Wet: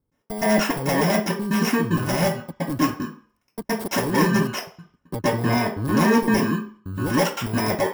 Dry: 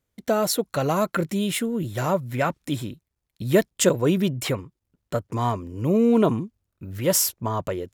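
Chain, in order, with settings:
samples in bit-reversed order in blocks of 32 samples
0:04.17–0:06.20: high-shelf EQ 8,400 Hz −6.5 dB
downward compressor 4 to 1, threshold −28 dBFS, peak gain reduction 13 dB
wrap-around overflow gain 22 dB
gate pattern "x..xxx.xxxx" 151 BPM −60 dB
convolution reverb RT60 0.45 s, pre-delay 115 ms, DRR −15.5 dB

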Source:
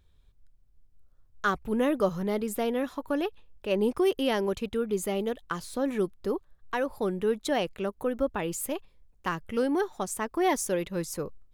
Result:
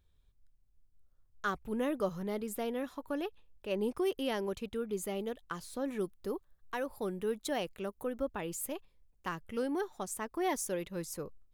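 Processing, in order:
high-shelf EQ 8,300 Hz +3.5 dB, from 0:06.01 +10 dB, from 0:08.06 +4.5 dB
level −7.5 dB

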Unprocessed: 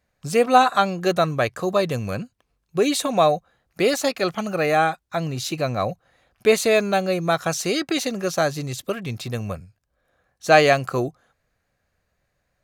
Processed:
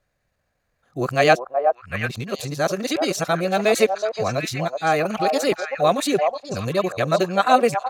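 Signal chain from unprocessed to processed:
played backwards from end to start
echo through a band-pass that steps 597 ms, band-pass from 730 Hz, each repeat 1.4 octaves, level −2 dB
tempo change 1.6×

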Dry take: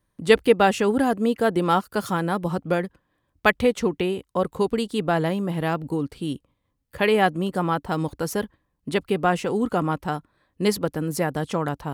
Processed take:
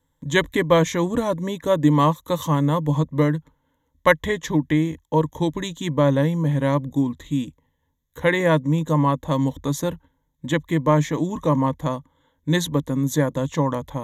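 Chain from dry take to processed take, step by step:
speed change −15%
EQ curve with evenly spaced ripples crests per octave 1.1, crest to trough 15 dB

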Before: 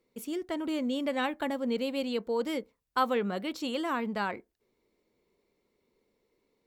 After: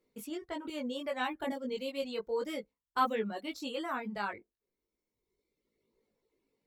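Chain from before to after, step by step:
reverb reduction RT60 1.5 s
multi-voice chorus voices 2, 0.33 Hz, delay 19 ms, depth 1.1 ms

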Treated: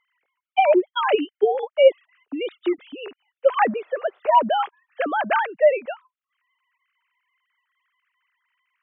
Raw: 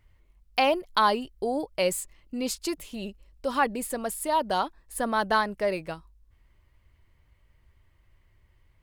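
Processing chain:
three sine waves on the formant tracks
0:00.93–0:01.55: graphic EQ with 15 bands 250 Hz +9 dB, 1,000 Hz −8 dB, 2,500 Hz +6 dB
0:03.51–0:04.18: noise in a band 410–1,600 Hz −67 dBFS
level +7 dB

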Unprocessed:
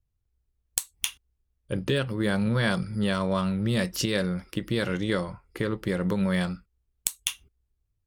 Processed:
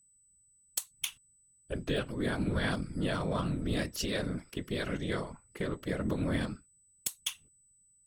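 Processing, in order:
random phases in short frames
steady tone 8,000 Hz −57 dBFS
level −6.5 dB

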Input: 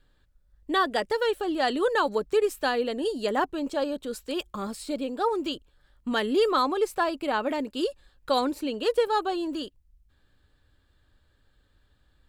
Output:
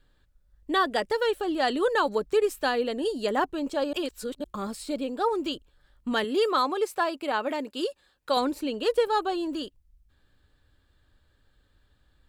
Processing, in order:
0:03.93–0:04.44: reverse
0:06.24–0:08.37: high-pass filter 300 Hz 6 dB per octave

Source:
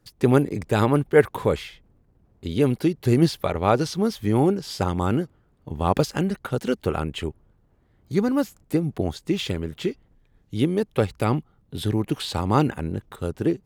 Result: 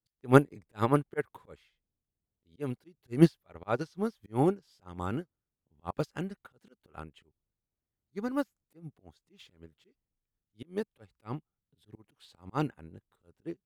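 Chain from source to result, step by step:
dynamic equaliser 1,400 Hz, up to +4 dB, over −38 dBFS, Q 1
volume swells 129 ms
expander for the loud parts 2.5 to 1, over −33 dBFS

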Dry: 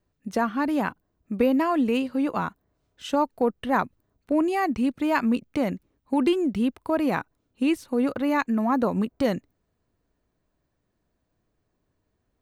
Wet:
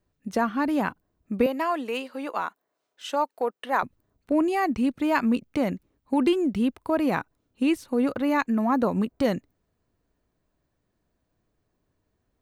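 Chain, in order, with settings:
0:01.46–0:03.83: high-pass filter 500 Hz 12 dB per octave

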